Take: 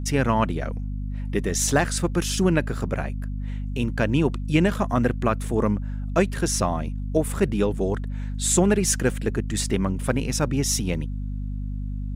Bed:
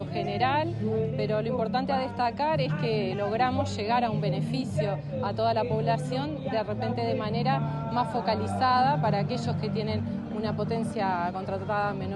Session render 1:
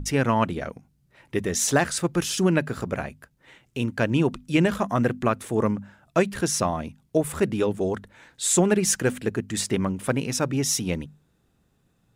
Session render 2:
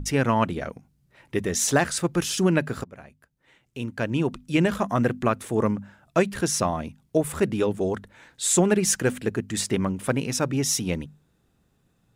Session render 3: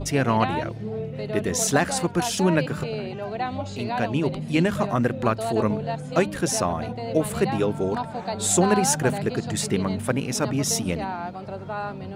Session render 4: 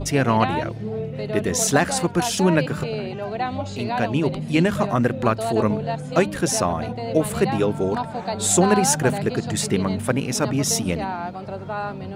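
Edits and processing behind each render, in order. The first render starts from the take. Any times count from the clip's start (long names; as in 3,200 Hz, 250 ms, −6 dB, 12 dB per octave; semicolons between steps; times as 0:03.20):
mains-hum notches 50/100/150/200/250 Hz
0:02.84–0:04.81: fade in, from −19.5 dB
mix in bed −3 dB
level +2.5 dB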